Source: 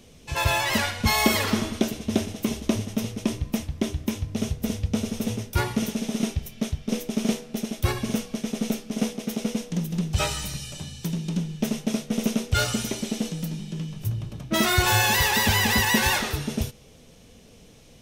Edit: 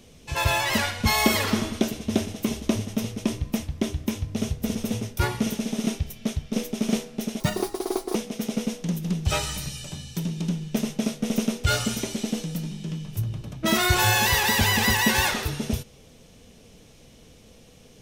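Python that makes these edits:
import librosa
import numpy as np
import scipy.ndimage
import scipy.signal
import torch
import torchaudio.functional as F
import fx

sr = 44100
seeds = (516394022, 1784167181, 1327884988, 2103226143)

y = fx.edit(x, sr, fx.cut(start_s=4.75, length_s=0.36),
    fx.speed_span(start_s=7.76, length_s=1.27, speed=1.69), tone=tone)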